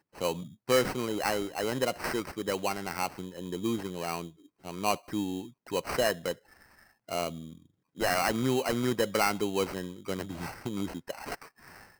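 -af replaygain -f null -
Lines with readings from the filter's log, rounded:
track_gain = +11.2 dB
track_peak = 0.138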